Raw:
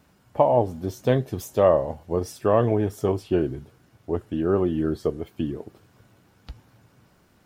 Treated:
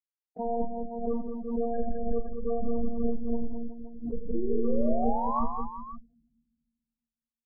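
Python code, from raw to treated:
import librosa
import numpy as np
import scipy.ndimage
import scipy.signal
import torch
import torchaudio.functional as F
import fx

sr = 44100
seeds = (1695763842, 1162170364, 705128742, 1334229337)

y = fx.octave_divider(x, sr, octaves=2, level_db=-1.0, at=(2.57, 4.72))
y = fx.schmitt(y, sr, flips_db=-21.0)
y = fx.robotise(y, sr, hz=233.0)
y = fx.rev_fdn(y, sr, rt60_s=1.3, lf_ratio=1.5, hf_ratio=0.35, size_ms=31.0, drr_db=19.0)
y = fx.spec_paint(y, sr, seeds[0], shape='rise', start_s=4.34, length_s=1.1, low_hz=330.0, high_hz=1200.0, level_db=-32.0)
y = scipy.signal.sosfilt(scipy.signal.butter(2, 2200.0, 'lowpass', fs=sr, output='sos'), y)
y = fx.spec_topn(y, sr, count=8)
y = fx.echo_multitap(y, sr, ms=(41, 87, 168, 210, 373, 523), db=(-11.0, -12.5, -14.5, -6.0, -12.5, -12.5))
y = fx.pre_swell(y, sr, db_per_s=67.0)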